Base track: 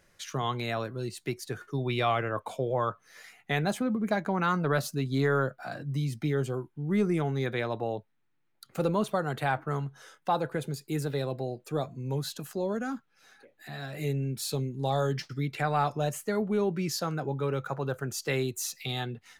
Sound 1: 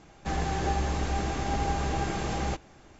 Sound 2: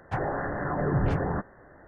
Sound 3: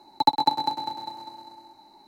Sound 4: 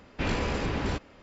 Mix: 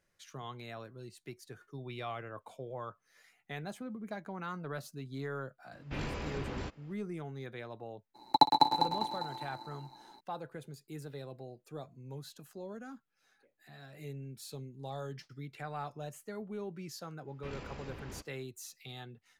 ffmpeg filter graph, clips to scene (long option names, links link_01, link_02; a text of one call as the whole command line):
ffmpeg -i bed.wav -i cue0.wav -i cue1.wav -i cue2.wav -i cue3.wav -filter_complex "[4:a]asplit=2[link_01][link_02];[0:a]volume=-13.5dB[link_03];[3:a]tremolo=f=120:d=0.571[link_04];[link_01]atrim=end=1.22,asetpts=PTS-STARTPTS,volume=-10dB,afade=type=in:duration=0.004:curve=hsin,afade=type=out:start_time=1.216:duration=0.004:curve=hsin,adelay=5720[link_05];[link_04]atrim=end=2.07,asetpts=PTS-STARTPTS,volume=-0.5dB,afade=type=in:duration=0.02,afade=type=out:start_time=2.05:duration=0.02,adelay=8140[link_06];[link_02]atrim=end=1.22,asetpts=PTS-STARTPTS,volume=-17dB,afade=type=in:duration=0.05,afade=type=out:start_time=1.17:duration=0.05,adelay=17240[link_07];[link_03][link_05][link_06][link_07]amix=inputs=4:normalize=0" out.wav